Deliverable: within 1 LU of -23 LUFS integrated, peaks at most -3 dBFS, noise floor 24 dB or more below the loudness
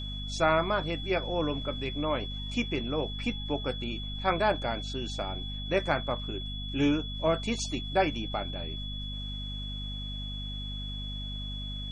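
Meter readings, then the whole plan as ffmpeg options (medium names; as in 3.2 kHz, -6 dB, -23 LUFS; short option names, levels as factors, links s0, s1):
hum 50 Hz; highest harmonic 250 Hz; hum level -35 dBFS; steady tone 3.4 kHz; tone level -39 dBFS; loudness -31.5 LUFS; peak level -12.0 dBFS; loudness target -23.0 LUFS
-> -af "bandreject=f=50:t=h:w=6,bandreject=f=100:t=h:w=6,bandreject=f=150:t=h:w=6,bandreject=f=200:t=h:w=6,bandreject=f=250:t=h:w=6"
-af "bandreject=f=3400:w=30"
-af "volume=2.66"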